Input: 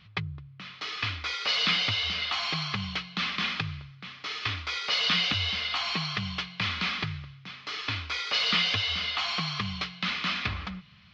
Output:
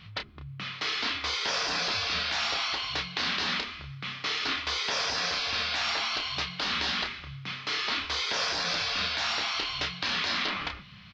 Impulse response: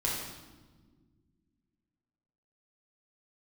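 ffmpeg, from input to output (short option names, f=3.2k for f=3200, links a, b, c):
-filter_complex "[0:a]afftfilt=real='re*lt(hypot(re,im),0.0631)':imag='im*lt(hypot(re,im),0.0631)':win_size=1024:overlap=0.75,asplit=2[a][b];[b]adelay=30,volume=-6.5dB[c];[a][c]amix=inputs=2:normalize=0,volume=5.5dB"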